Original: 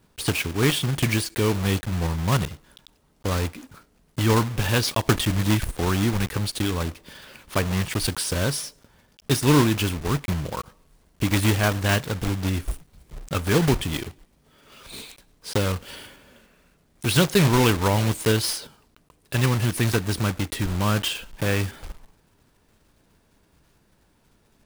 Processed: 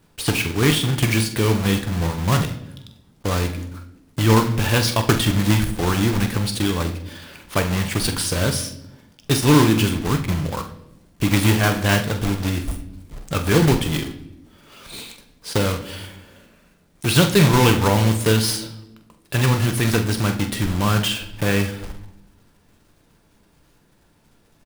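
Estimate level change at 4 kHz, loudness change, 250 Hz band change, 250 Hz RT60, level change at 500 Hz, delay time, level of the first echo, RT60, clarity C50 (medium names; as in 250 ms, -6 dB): +3.5 dB, +3.5 dB, +4.5 dB, 1.4 s, +3.0 dB, 45 ms, -10.5 dB, 0.85 s, 12.0 dB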